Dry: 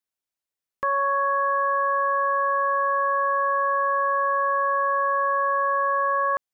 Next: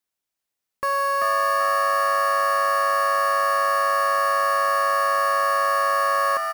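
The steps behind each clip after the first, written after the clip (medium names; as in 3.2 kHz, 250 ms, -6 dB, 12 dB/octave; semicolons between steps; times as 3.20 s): in parallel at -4 dB: integer overflow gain 30 dB; on the sum: frequency-shifting echo 386 ms, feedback 34%, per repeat +100 Hz, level -4 dB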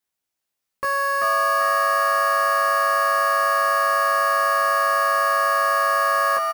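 doubling 15 ms -2.5 dB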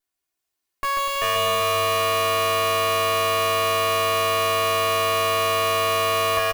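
comb filter that takes the minimum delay 2.8 ms; on a send: bouncing-ball echo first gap 140 ms, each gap 0.75×, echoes 5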